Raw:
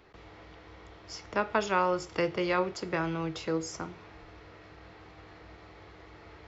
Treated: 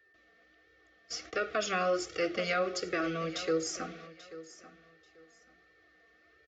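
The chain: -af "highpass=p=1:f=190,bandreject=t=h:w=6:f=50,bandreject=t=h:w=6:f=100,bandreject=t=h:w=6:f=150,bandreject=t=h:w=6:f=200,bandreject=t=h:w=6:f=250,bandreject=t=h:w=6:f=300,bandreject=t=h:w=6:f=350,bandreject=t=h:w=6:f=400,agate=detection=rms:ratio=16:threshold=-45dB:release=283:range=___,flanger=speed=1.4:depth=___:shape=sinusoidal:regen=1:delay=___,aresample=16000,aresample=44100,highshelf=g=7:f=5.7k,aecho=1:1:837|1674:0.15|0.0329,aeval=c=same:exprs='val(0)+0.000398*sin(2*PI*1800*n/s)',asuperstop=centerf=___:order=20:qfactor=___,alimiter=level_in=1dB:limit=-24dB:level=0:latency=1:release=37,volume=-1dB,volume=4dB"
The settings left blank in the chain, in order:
-16dB, 2.3, 2.1, 930, 3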